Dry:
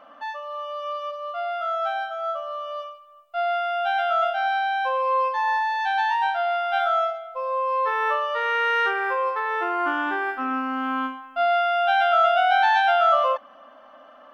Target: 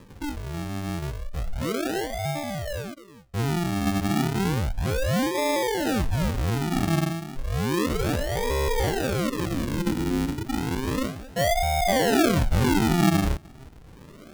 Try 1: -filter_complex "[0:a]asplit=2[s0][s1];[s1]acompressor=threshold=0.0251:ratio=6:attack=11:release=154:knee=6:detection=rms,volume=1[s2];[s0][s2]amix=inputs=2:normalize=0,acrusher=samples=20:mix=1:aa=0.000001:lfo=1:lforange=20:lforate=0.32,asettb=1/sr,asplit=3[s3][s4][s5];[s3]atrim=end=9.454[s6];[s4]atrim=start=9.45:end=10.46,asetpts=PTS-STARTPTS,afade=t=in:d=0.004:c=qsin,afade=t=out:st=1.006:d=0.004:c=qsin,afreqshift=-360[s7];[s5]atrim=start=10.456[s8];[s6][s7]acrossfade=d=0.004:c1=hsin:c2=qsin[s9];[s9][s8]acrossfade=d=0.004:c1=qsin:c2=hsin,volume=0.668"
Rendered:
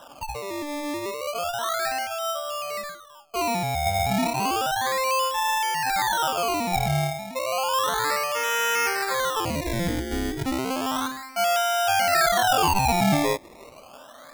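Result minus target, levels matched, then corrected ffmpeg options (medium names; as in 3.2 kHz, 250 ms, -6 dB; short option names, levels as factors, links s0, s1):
decimation with a swept rate: distortion -29 dB
-filter_complex "[0:a]asplit=2[s0][s1];[s1]acompressor=threshold=0.0251:ratio=6:attack=11:release=154:knee=6:detection=rms,volume=1[s2];[s0][s2]amix=inputs=2:normalize=0,acrusher=samples=60:mix=1:aa=0.000001:lfo=1:lforange=60:lforate=0.32,asettb=1/sr,asplit=3[s3][s4][s5];[s3]atrim=end=9.454[s6];[s4]atrim=start=9.45:end=10.46,asetpts=PTS-STARTPTS,afade=t=in:d=0.004:c=qsin,afade=t=out:st=1.006:d=0.004:c=qsin,afreqshift=-360[s7];[s5]atrim=start=10.456[s8];[s6][s7]acrossfade=d=0.004:c1=hsin:c2=qsin[s9];[s9][s8]acrossfade=d=0.004:c1=qsin:c2=hsin,volume=0.668"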